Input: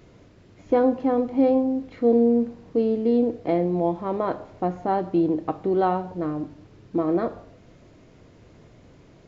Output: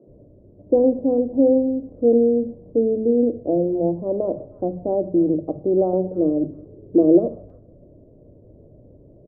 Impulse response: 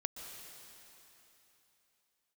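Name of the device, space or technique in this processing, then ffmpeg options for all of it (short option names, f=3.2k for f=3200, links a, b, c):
under water: -filter_complex "[0:a]lowpass=f=530:w=0.5412,lowpass=f=530:w=1.3066,equalizer=f=590:t=o:w=0.23:g=10,asettb=1/sr,asplit=3[a][b][c];[a]atrim=end=5.934[d];[b]atrim=start=5.93:end=7.19,asetpts=PTS-STARTPTS,afade=t=in:d=0.004:c=qsin,afade=t=out:st=1.256:d=0.004:c=qsin,equalizer=f=410:t=o:w=1.1:g=8[e];[c]atrim=start=7.186[f];[d][e]acrossfade=d=0.004:c1=hsin:c2=qsin[g];[g][f]acrossfade=d=0.004:c1=qsin:c2=hsin,acrossover=split=180|1700[h][i][j];[h]adelay=70[k];[j]adelay=310[l];[k][i][l]amix=inputs=3:normalize=0,volume=4dB"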